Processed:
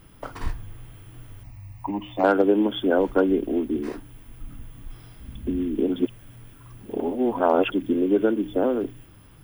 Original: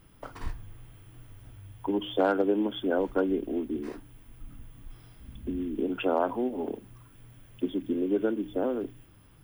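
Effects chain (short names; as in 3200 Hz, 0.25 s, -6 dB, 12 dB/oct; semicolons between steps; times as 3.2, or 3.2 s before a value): 1.43–2.24 fixed phaser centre 2200 Hz, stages 8; 5.96–7.72 reverse; gain +6.5 dB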